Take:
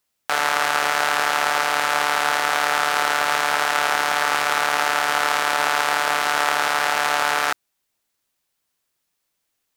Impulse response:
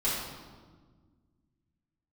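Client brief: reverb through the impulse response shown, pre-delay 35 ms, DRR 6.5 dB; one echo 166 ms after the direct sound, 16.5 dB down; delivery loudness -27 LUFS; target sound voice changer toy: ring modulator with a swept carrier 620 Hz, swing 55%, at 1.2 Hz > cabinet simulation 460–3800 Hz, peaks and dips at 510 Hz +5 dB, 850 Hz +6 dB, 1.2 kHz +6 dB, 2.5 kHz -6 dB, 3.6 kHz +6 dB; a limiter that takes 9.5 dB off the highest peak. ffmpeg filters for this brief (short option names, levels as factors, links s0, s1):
-filter_complex "[0:a]alimiter=limit=0.282:level=0:latency=1,aecho=1:1:166:0.15,asplit=2[s0][s1];[1:a]atrim=start_sample=2205,adelay=35[s2];[s1][s2]afir=irnorm=-1:irlink=0,volume=0.168[s3];[s0][s3]amix=inputs=2:normalize=0,aeval=exprs='val(0)*sin(2*PI*620*n/s+620*0.55/1.2*sin(2*PI*1.2*n/s))':c=same,highpass=460,equalizer=f=510:t=q:w=4:g=5,equalizer=f=850:t=q:w=4:g=6,equalizer=f=1200:t=q:w=4:g=6,equalizer=f=2500:t=q:w=4:g=-6,equalizer=f=3600:t=q:w=4:g=6,lowpass=f=3800:w=0.5412,lowpass=f=3800:w=1.3066"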